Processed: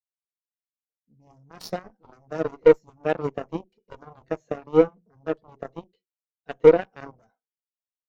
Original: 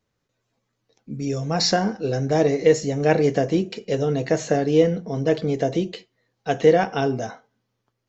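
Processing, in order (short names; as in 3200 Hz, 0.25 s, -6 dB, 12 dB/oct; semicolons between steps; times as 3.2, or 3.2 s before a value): added harmonics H 4 -17 dB, 6 -42 dB, 7 -15 dB, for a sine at -4 dBFS; spectral expander 1.5:1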